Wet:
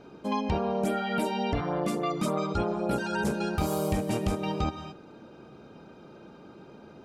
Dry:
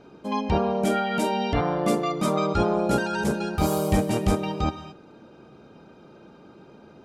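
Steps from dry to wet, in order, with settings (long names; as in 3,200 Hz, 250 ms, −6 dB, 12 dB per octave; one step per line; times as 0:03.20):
loose part that buzzes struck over −23 dBFS, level −32 dBFS
downward compressor, threshold −24 dBFS, peak gain reduction 8.5 dB
0:00.84–0:03.27: auto-filter notch sine 3.5 Hz 480–6,900 Hz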